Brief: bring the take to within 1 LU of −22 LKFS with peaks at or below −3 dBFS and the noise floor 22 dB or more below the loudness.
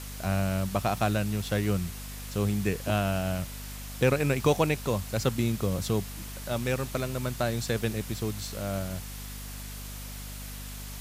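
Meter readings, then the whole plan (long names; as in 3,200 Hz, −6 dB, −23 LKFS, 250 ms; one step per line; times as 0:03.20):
mains hum 50 Hz; hum harmonics up to 250 Hz; level of the hum −39 dBFS; background noise floor −40 dBFS; target noise floor −52 dBFS; integrated loudness −30.0 LKFS; sample peak −11.5 dBFS; target loudness −22.0 LKFS
→ hum removal 50 Hz, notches 5
broadband denoise 12 dB, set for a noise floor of −40 dBFS
level +8 dB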